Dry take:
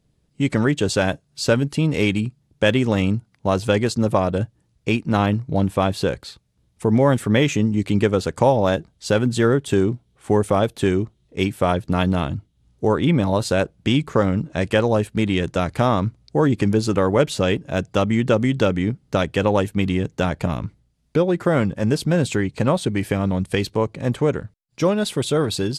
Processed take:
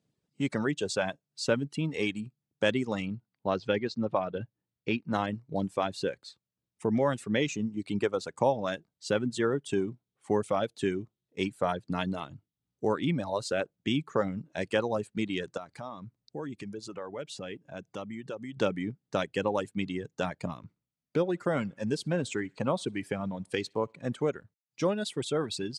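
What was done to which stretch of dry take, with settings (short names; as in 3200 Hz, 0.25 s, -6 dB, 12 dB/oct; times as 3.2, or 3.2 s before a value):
3.06–5.13 LPF 4700 Hz 24 dB/oct
15.57–18.57 compressor 2:1, threshold -32 dBFS
20.63–24.32 thinning echo 63 ms, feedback 51%, level -20 dB
whole clip: LPF 9300 Hz 24 dB/oct; reverb removal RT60 1.8 s; HPF 150 Hz 12 dB/oct; gain -8.5 dB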